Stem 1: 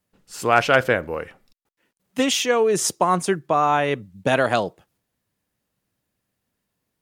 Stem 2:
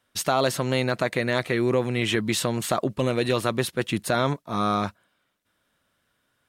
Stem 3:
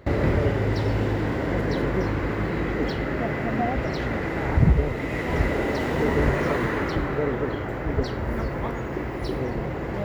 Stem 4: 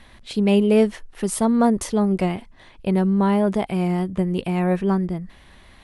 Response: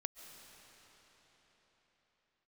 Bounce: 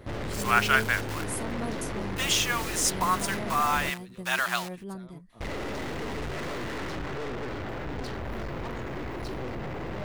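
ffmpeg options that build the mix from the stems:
-filter_complex "[0:a]acrusher=bits=6:dc=4:mix=0:aa=0.000001,highpass=frequency=1000:width=0.5412,highpass=frequency=1000:width=1.3066,volume=-2.5dB[link_01];[1:a]alimiter=limit=-19.5dB:level=0:latency=1,acrossover=split=870[link_02][link_03];[link_02]aeval=exprs='val(0)*(1-0.7/2+0.7/2*cos(2*PI*9.5*n/s))':channel_layout=same[link_04];[link_03]aeval=exprs='val(0)*(1-0.7/2-0.7/2*cos(2*PI*9.5*n/s))':channel_layout=same[link_05];[link_04][link_05]amix=inputs=2:normalize=0,adelay=850,volume=-19.5dB[link_06];[2:a]aeval=exprs='(tanh(56.2*val(0)+0.6)-tanh(0.6))/56.2':channel_layout=same,volume=2dB,asplit=3[link_07][link_08][link_09];[link_07]atrim=end=3.9,asetpts=PTS-STARTPTS,afade=type=out:start_time=3.896:duration=0.004:curve=hsin[link_10];[link_08]atrim=start=3.9:end=5.4,asetpts=PTS-STARTPTS,volume=0[link_11];[link_09]atrim=start=5.4,asetpts=PTS-STARTPTS,afade=type=in:duration=0.004:curve=hsin[link_12];[link_10][link_11][link_12]concat=n=3:v=0:a=1[link_13];[3:a]crystalizer=i=2.5:c=0,volume=-19dB[link_14];[link_01][link_06][link_13][link_14]amix=inputs=4:normalize=0"

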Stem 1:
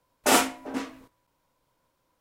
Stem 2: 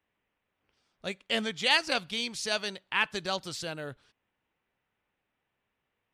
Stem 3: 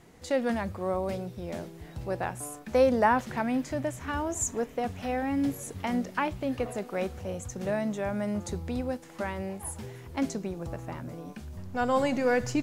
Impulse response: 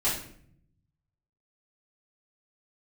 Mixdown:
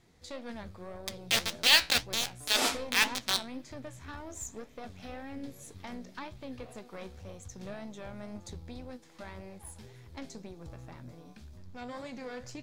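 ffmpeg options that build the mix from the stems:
-filter_complex "[0:a]adelay=2300,volume=-8dB[link_01];[1:a]acrusher=bits=3:mix=0:aa=0.000001,volume=1.5dB[link_02];[2:a]lowshelf=frequency=92:gain=7,acompressor=threshold=-30dB:ratio=2,aeval=exprs='(tanh(15.8*val(0)+0.6)-tanh(0.6))/15.8':channel_layout=same,volume=-4.5dB[link_03];[link_01][link_02][link_03]amix=inputs=3:normalize=0,equalizer=frequency=4000:width_type=o:width=1.5:gain=9,bandreject=frequency=2900:width=13,flanger=delay=8:depth=8.5:regen=66:speed=1.9:shape=sinusoidal"

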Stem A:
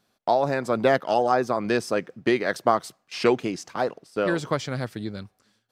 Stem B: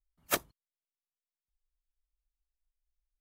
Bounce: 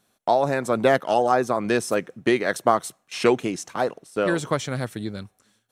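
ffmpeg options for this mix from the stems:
ffmpeg -i stem1.wav -i stem2.wav -filter_complex "[0:a]bandreject=frequency=4800:width=6.2,volume=1.5dB,asplit=2[link_01][link_02];[1:a]acompressor=threshold=-30dB:ratio=6,adelay=1600,volume=-11dB[link_03];[link_02]apad=whole_len=211987[link_04];[link_03][link_04]sidechaincompress=threshold=-22dB:ratio=8:attack=16:release=949[link_05];[link_01][link_05]amix=inputs=2:normalize=0,equalizer=frequency=9800:width_type=o:width=1:gain=8" out.wav

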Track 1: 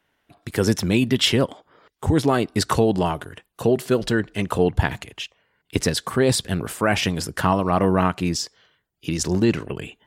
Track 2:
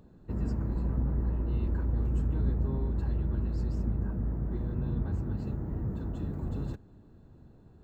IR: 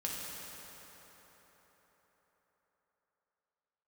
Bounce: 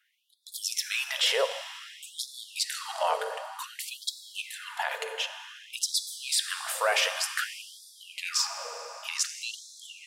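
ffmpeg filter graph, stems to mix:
-filter_complex "[0:a]highpass=440,alimiter=limit=-15.5dB:level=0:latency=1:release=23,volume=-2.5dB,asplit=3[link_01][link_02][link_03];[link_02]volume=-5.5dB[link_04];[1:a]adelay=600,volume=-8.5dB[link_05];[link_03]apad=whole_len=372191[link_06];[link_05][link_06]sidechaincompress=threshold=-32dB:ratio=8:attack=16:release=245[link_07];[2:a]atrim=start_sample=2205[link_08];[link_04][link_08]afir=irnorm=-1:irlink=0[link_09];[link_01][link_07][link_09]amix=inputs=3:normalize=0,afftfilt=real='re*gte(b*sr/1024,420*pow(3400/420,0.5+0.5*sin(2*PI*0.54*pts/sr)))':imag='im*gte(b*sr/1024,420*pow(3400/420,0.5+0.5*sin(2*PI*0.54*pts/sr)))':win_size=1024:overlap=0.75"

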